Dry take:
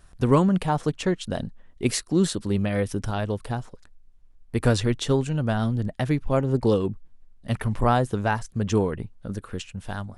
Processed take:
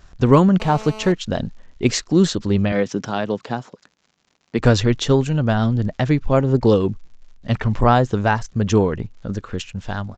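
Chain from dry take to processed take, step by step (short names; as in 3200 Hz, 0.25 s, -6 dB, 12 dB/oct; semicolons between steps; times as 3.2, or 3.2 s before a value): 2.72–4.59 HPF 150 Hz 24 dB/oct; crackle 130/s -49 dBFS; downsampling 16000 Hz; 0.6–1.12 GSM buzz -41 dBFS; gain +6 dB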